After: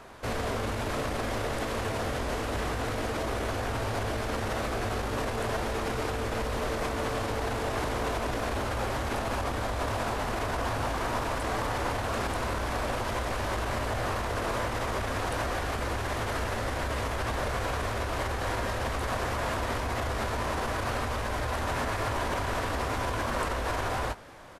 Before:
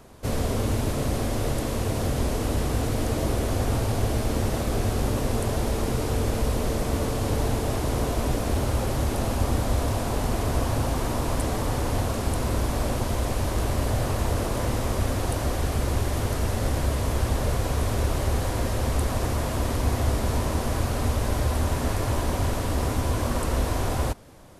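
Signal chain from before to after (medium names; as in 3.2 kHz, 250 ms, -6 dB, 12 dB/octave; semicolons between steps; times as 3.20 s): doubling 18 ms -11 dB; peak limiter -21.5 dBFS, peak gain reduction 10.5 dB; FFT filter 200 Hz 0 dB, 1.6 kHz +13 dB, 13 kHz -2 dB; trim -4.5 dB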